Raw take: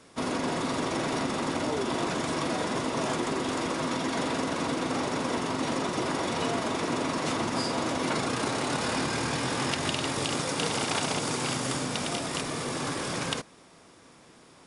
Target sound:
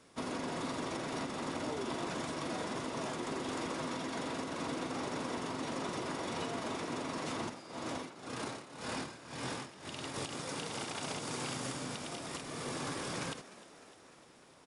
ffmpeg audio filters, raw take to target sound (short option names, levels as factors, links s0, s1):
-filter_complex "[0:a]alimiter=limit=0.0891:level=0:latency=1:release=320,asplit=3[s0][s1][s2];[s0]afade=t=out:st=7.48:d=0.02[s3];[s1]tremolo=f=1.9:d=0.87,afade=t=in:st=7.48:d=0.02,afade=t=out:st=10.13:d=0.02[s4];[s2]afade=t=in:st=10.13:d=0.02[s5];[s3][s4][s5]amix=inputs=3:normalize=0,asplit=8[s6][s7][s8][s9][s10][s11][s12][s13];[s7]adelay=302,afreqshift=63,volume=0.133[s14];[s8]adelay=604,afreqshift=126,volume=0.0871[s15];[s9]adelay=906,afreqshift=189,volume=0.0562[s16];[s10]adelay=1208,afreqshift=252,volume=0.0367[s17];[s11]adelay=1510,afreqshift=315,volume=0.0237[s18];[s12]adelay=1812,afreqshift=378,volume=0.0155[s19];[s13]adelay=2114,afreqshift=441,volume=0.01[s20];[s6][s14][s15][s16][s17][s18][s19][s20]amix=inputs=8:normalize=0,volume=0.447"